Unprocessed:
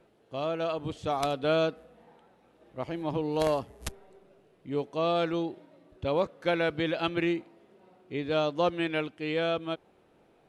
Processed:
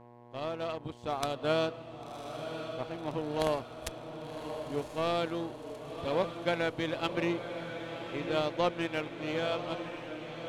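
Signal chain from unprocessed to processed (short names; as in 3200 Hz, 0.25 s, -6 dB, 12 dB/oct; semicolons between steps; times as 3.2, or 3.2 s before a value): buzz 120 Hz, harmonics 9, -44 dBFS -3 dB/oct; power-law curve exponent 1.4; diffused feedback echo 1.082 s, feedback 58%, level -8 dB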